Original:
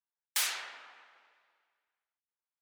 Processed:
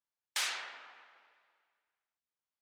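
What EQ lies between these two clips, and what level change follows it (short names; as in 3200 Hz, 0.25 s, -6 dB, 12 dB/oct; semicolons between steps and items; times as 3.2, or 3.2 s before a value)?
air absorption 55 m; 0.0 dB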